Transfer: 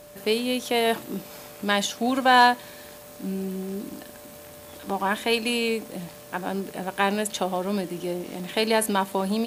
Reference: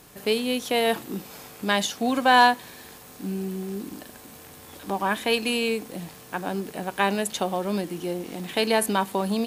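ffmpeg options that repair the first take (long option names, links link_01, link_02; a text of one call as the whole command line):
ffmpeg -i in.wav -af "bandreject=frequency=590:width=30" out.wav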